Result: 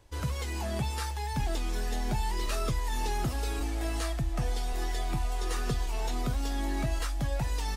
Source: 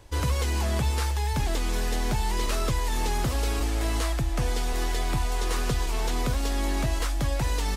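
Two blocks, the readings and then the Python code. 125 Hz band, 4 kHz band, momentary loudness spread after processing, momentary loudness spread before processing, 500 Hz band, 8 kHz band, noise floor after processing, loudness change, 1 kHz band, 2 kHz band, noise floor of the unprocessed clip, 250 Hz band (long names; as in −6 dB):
−5.0 dB, −6.0 dB, 2 LU, 2 LU, −5.5 dB, −6.5 dB, −34 dBFS, −5.0 dB, −4.0 dB, −5.5 dB, −27 dBFS, −4.0 dB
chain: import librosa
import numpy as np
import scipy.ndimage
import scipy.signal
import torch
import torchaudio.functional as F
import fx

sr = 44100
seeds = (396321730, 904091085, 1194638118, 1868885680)

y = fx.noise_reduce_blind(x, sr, reduce_db=6)
y = y * 10.0 ** (-2.5 / 20.0)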